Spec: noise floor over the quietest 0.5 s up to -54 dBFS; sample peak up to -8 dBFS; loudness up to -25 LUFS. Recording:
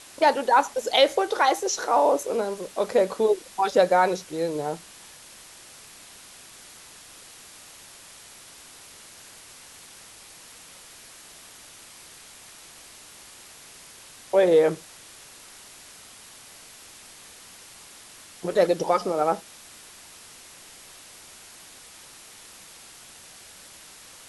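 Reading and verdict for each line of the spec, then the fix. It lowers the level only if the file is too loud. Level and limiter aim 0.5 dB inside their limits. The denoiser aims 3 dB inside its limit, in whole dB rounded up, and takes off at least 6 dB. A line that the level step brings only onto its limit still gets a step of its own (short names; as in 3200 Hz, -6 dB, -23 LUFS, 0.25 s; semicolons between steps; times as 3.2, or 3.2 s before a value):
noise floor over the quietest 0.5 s -47 dBFS: fail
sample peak -7.0 dBFS: fail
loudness -23.0 LUFS: fail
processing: denoiser 8 dB, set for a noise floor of -47 dBFS; gain -2.5 dB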